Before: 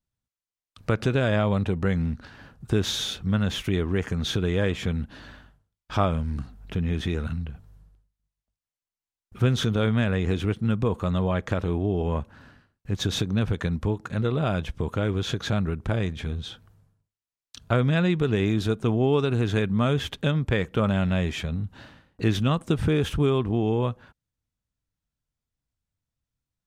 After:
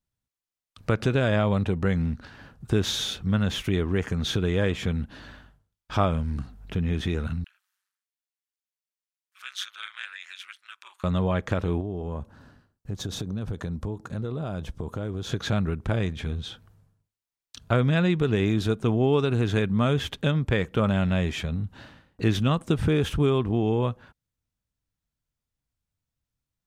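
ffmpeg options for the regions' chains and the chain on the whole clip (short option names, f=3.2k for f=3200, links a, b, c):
-filter_complex "[0:a]asettb=1/sr,asplit=3[a][b][c];[a]atrim=end=7.444[d];[b]atrim=start=7.44:end=11.04,asetpts=PTS-STARTPTS,afade=t=in:d=0.004:c=qsin,afade=t=out:st=3.596:d=0.004:c=qsin,highpass=f=1.5k:w=0.5412,highpass=f=1.5k:w=1.3066,aeval=exprs='val(0)*sin(2*PI*96*n/s)':c=same[e];[c]atrim=start=11.036[f];[d][e]acrossfade=d=0.004:c1=hsin:c2=qsin[g];[g][f]acrossfade=d=0.004:c1=qsin:c2=hsin,asettb=1/sr,asplit=3[h][i][j];[h]atrim=end=11.804[k];[i]atrim=start=11.8:end=15.32,asetpts=PTS-STARTPTS,afade=t=in:d=0.004:c=qsin,afade=t=out:st=3.516:d=0.004:c=qsin,acompressor=threshold=-27dB:ratio=5:attack=3.2:release=140:knee=1:detection=peak,equalizer=f=2.3k:w=0.97:g=-8.5[l];[j]atrim=start=15.316[m];[k][l]acrossfade=d=0.004:c1=hsin:c2=qsin[n];[n][m]acrossfade=d=0.004:c1=qsin:c2=hsin"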